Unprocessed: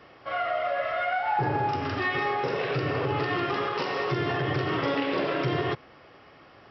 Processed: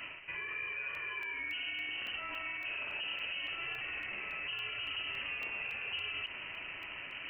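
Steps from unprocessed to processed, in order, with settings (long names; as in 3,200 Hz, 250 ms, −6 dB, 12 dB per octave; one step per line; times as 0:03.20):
reversed playback
downward compressor 6 to 1, threshold −41 dBFS, peak gain reduction 17.5 dB
reversed playback
brickwall limiter −40.5 dBFS, peak gain reduction 9.5 dB
in parallel at −4.5 dB: sample-rate reduction 2,100 Hz, jitter 0%
on the sum: wrong playback speed 48 kHz file played as 44.1 kHz
voice inversion scrambler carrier 3,000 Hz
regular buffer underruns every 0.28 s, samples 64, zero, from 0:00.95
level +5.5 dB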